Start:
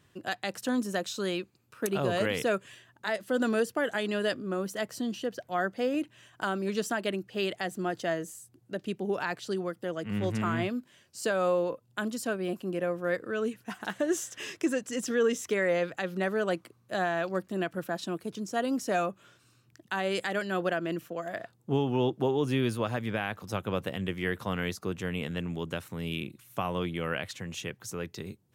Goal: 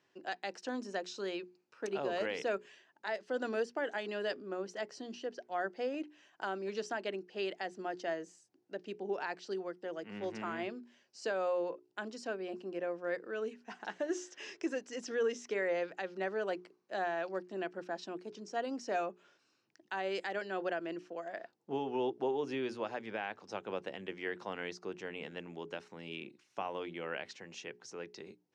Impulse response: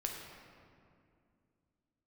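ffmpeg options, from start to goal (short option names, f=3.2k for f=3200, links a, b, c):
-af "highpass=300,equalizer=f=380:t=q:w=4:g=3,equalizer=f=830:t=q:w=4:g=4,equalizer=f=1.2k:t=q:w=4:g=-4,equalizer=f=3.5k:t=q:w=4:g=-5,equalizer=f=5.4k:t=q:w=4:g=3,lowpass=f=6k:w=0.5412,lowpass=f=6k:w=1.3066,bandreject=f=60:t=h:w=6,bandreject=f=120:t=h:w=6,bandreject=f=180:t=h:w=6,bandreject=f=240:t=h:w=6,bandreject=f=300:t=h:w=6,bandreject=f=360:t=h:w=6,bandreject=f=420:t=h:w=6,volume=-6.5dB"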